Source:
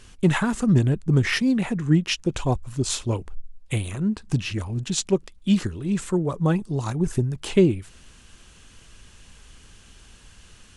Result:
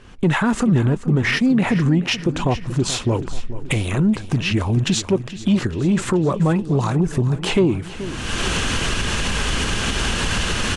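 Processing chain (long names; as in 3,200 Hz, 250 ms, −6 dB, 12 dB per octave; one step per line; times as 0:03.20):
camcorder AGC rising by 36 dB per second
low-pass filter 3,000 Hz 6 dB per octave
low-shelf EQ 110 Hz −8.5 dB
in parallel at +3 dB: brickwall limiter −20 dBFS, peak gain reduction 12 dB
on the sum: soft clipping −7 dBFS, distortion −24 dB
on a send: repeating echo 430 ms, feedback 52%, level −14 dB
on the sum: one half of a high-frequency compander decoder only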